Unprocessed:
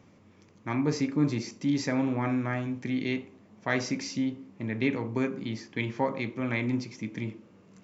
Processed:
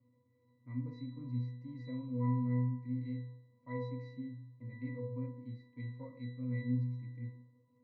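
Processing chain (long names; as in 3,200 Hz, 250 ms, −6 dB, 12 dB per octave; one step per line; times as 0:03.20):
one-sided soft clipper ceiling −13 dBFS
resonances in every octave B, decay 0.8 s
level +5.5 dB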